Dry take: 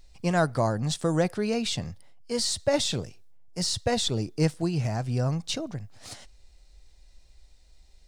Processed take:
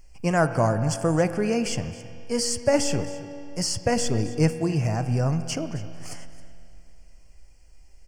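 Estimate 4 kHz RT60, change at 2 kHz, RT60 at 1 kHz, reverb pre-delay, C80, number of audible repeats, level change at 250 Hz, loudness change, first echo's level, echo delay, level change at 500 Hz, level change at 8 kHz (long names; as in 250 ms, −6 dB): 2.5 s, +3.5 dB, 2.7 s, 4 ms, 10.5 dB, 1, +3.5 dB, +2.5 dB, −18.0 dB, 268 ms, +3.5 dB, +3.0 dB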